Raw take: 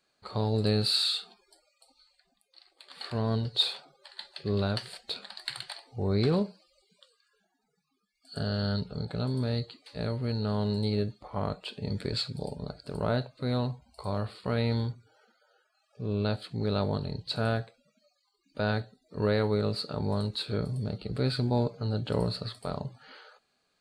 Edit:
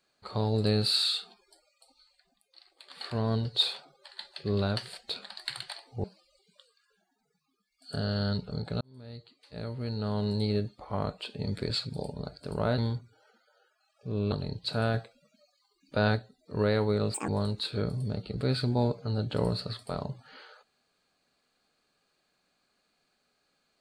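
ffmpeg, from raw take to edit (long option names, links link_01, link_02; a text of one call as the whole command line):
ffmpeg -i in.wav -filter_complex "[0:a]asplit=9[link_01][link_02][link_03][link_04][link_05][link_06][link_07][link_08][link_09];[link_01]atrim=end=6.042[link_10];[link_02]atrim=start=6.468:end=9.24,asetpts=PTS-STARTPTS,afade=type=out:start_time=2.768:duration=0.004:curve=hsin[link_11];[link_03]atrim=start=9.24:end=13.212,asetpts=PTS-STARTPTS,afade=type=in:duration=1.58[link_12];[link_04]atrim=start=14.718:end=16.262[link_13];[link_05]atrim=start=16.948:end=17.572[link_14];[link_06]atrim=start=17.568:end=18.792,asetpts=PTS-STARTPTS,volume=3dB[link_15];[link_07]atrim=start=18.788:end=19.774[link_16];[link_08]atrim=start=19.77:end=20.04,asetpts=PTS-STARTPTS,asetrate=82908,aresample=44100[link_17];[link_09]atrim=start=20.036[link_18];[link_11][link_12]concat=n=2:v=0:a=1[link_19];[link_10][link_19]acrossfade=duration=0.004:curve1=hsin:curve2=hsin[link_20];[link_20][link_13]acrossfade=duration=0.004:curve1=hsin:curve2=hsin[link_21];[link_21][link_14]acrossfade=duration=0.004:curve1=hsin:curve2=hsin[link_22];[link_22][link_15]acrossfade=duration=0.004:curve1=hsin:curve2=hsin[link_23];[link_23][link_16]acrossfade=duration=0.004:curve1=hsin:curve2=hsin[link_24];[link_24][link_17]acrossfade=duration=0.004:curve1=hsin:curve2=hsin[link_25];[link_25][link_18]acrossfade=duration=0.004:curve1=hsin:curve2=hsin" out.wav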